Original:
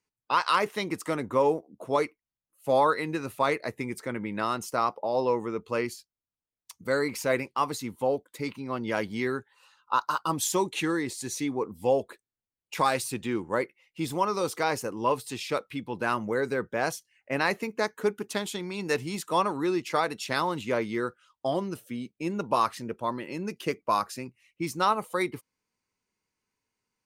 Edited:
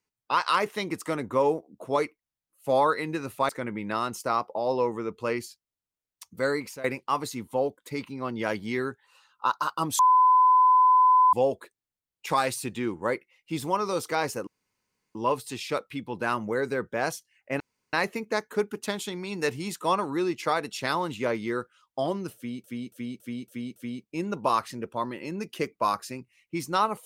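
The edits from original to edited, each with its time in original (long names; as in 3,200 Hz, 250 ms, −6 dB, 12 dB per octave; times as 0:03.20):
0:03.49–0:03.97: remove
0:07.00–0:07.32: fade out, to −18.5 dB
0:10.47–0:11.81: beep over 1,010 Hz −15 dBFS
0:14.95: splice in room tone 0.68 s
0:17.40: splice in room tone 0.33 s
0:21.83–0:22.11: repeat, 6 plays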